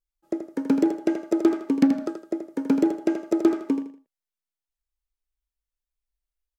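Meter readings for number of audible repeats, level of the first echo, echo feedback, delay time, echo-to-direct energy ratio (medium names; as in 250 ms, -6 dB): 3, -8.0 dB, 29%, 80 ms, -7.5 dB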